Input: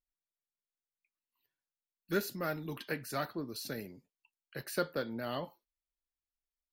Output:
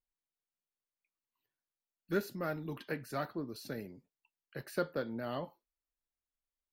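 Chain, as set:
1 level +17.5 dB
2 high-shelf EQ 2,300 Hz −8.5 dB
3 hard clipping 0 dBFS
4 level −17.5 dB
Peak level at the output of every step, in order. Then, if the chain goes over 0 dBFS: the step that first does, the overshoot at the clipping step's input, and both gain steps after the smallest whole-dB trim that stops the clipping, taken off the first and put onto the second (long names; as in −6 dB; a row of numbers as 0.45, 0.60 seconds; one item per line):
−1.0, −2.5, −2.5, −20.0 dBFS
no step passes full scale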